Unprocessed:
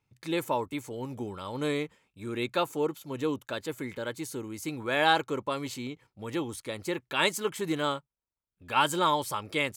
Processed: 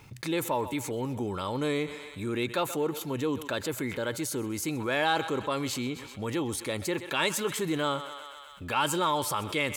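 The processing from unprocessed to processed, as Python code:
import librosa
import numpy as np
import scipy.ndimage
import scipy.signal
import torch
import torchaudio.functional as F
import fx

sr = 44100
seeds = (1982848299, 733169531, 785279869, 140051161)

p1 = 10.0 ** (-24.0 / 20.0) * np.tanh(x / 10.0 ** (-24.0 / 20.0))
p2 = x + (p1 * 10.0 ** (-10.5 / 20.0))
p3 = fx.echo_thinned(p2, sr, ms=127, feedback_pct=59, hz=530.0, wet_db=-20.0)
p4 = fx.env_flatten(p3, sr, amount_pct=50)
y = p4 * 10.0 ** (-5.0 / 20.0)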